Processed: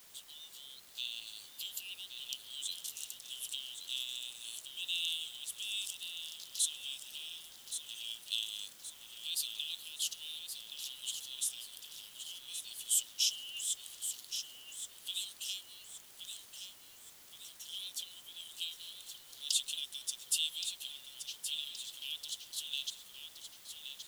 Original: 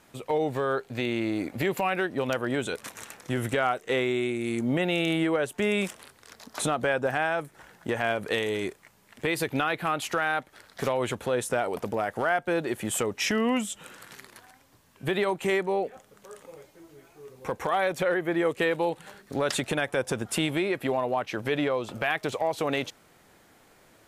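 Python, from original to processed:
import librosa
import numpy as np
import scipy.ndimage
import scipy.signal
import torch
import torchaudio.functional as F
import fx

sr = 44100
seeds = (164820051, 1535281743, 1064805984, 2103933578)

p1 = scipy.signal.sosfilt(scipy.signal.butter(16, 2900.0, 'highpass', fs=sr, output='sos'), x)
p2 = fx.quant_dither(p1, sr, seeds[0], bits=10, dither='triangular')
p3 = p2 + fx.echo_feedback(p2, sr, ms=1122, feedback_pct=46, wet_db=-8.5, dry=0)
y = F.gain(torch.from_numpy(p3), 1.0).numpy()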